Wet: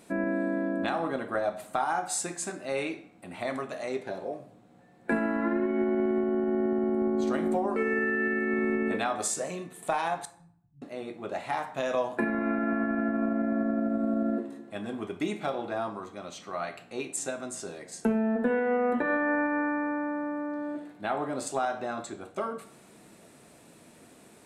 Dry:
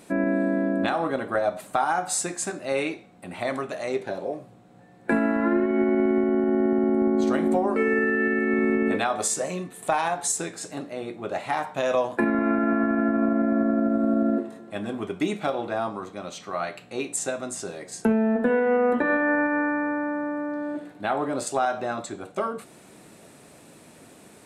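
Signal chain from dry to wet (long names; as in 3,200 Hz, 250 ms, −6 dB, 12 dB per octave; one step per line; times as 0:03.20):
0:10.25–0:10.82: inverse Chebyshev band-stop filter 500–9,400 Hz, stop band 70 dB
on a send: convolution reverb RT60 0.60 s, pre-delay 3 ms, DRR 11 dB
on the sum: level −5 dB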